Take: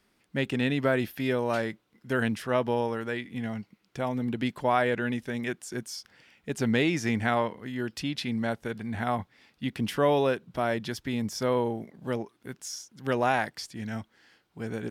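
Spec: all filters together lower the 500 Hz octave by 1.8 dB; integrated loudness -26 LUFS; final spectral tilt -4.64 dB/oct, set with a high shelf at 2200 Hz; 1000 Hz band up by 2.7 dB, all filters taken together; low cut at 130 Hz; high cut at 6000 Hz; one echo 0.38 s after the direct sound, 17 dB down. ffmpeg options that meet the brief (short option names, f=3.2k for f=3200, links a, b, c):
-af "highpass=130,lowpass=6k,equalizer=f=500:t=o:g=-3.5,equalizer=f=1k:t=o:g=6,highshelf=f=2.2k:g=-5.5,aecho=1:1:380:0.141,volume=4dB"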